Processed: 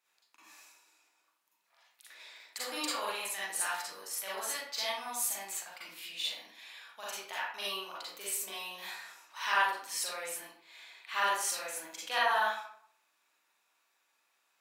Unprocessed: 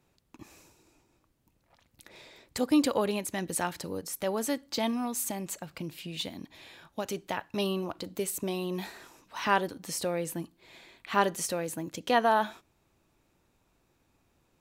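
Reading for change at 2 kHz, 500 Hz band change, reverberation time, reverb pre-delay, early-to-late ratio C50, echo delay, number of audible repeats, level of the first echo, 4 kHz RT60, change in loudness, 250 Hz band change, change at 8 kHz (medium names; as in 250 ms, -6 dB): +2.0 dB, -11.0 dB, 0.60 s, 37 ms, -2.0 dB, no echo, no echo, no echo, 0.40 s, -3.5 dB, -21.5 dB, +0.5 dB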